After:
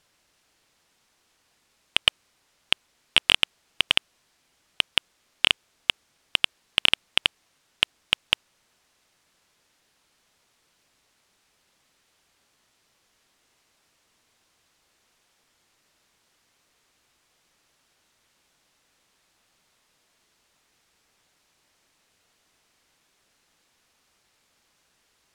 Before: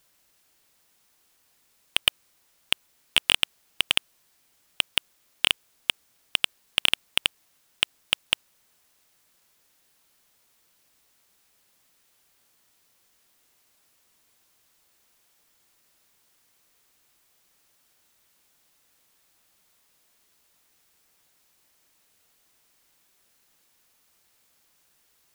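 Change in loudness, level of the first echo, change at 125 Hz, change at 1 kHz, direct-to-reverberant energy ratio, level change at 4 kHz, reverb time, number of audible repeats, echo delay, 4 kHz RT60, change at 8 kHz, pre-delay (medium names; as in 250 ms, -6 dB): +2.0 dB, no echo, +3.0 dB, +2.5 dB, no reverb, +2.0 dB, no reverb, no echo, no echo, no reverb, -4.0 dB, no reverb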